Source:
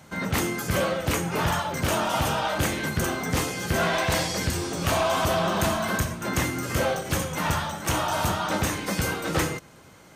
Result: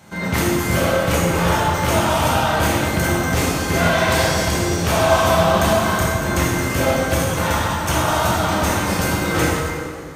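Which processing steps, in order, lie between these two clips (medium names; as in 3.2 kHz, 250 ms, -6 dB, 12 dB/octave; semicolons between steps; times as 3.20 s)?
plate-style reverb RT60 2.3 s, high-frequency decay 0.65×, DRR -4.5 dB; trim +1.5 dB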